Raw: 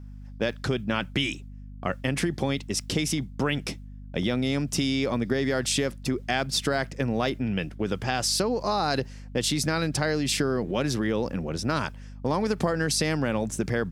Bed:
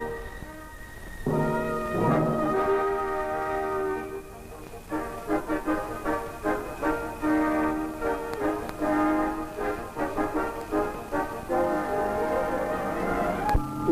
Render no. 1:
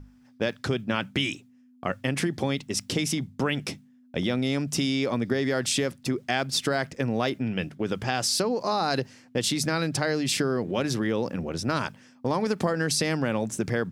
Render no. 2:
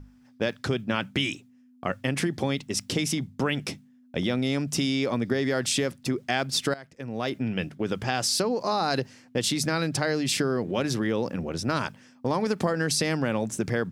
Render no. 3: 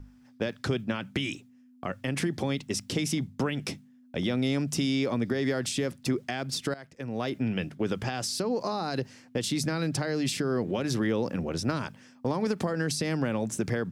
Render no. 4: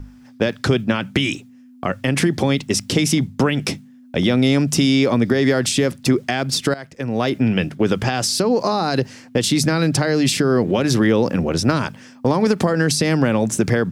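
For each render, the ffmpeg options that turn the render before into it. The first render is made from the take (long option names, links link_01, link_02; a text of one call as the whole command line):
ffmpeg -i in.wav -af "bandreject=frequency=50:width_type=h:width=6,bandreject=frequency=100:width_type=h:width=6,bandreject=frequency=150:width_type=h:width=6,bandreject=frequency=200:width_type=h:width=6" out.wav
ffmpeg -i in.wav -filter_complex "[0:a]asplit=2[link_01][link_02];[link_01]atrim=end=6.74,asetpts=PTS-STARTPTS,afade=type=out:start_time=6.736:duration=0.004:curve=hsin:silence=0.141254[link_03];[link_02]atrim=start=6.74,asetpts=PTS-STARTPTS,afade=type=in:duration=0.63:curve=qua:silence=0.141254[link_04];[link_03][link_04]concat=n=2:v=0:a=1" out.wav
ffmpeg -i in.wav -filter_complex "[0:a]alimiter=limit=-15.5dB:level=0:latency=1:release=168,acrossover=split=420[link_01][link_02];[link_02]acompressor=threshold=-30dB:ratio=6[link_03];[link_01][link_03]amix=inputs=2:normalize=0" out.wav
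ffmpeg -i in.wav -af "volume=11.5dB" out.wav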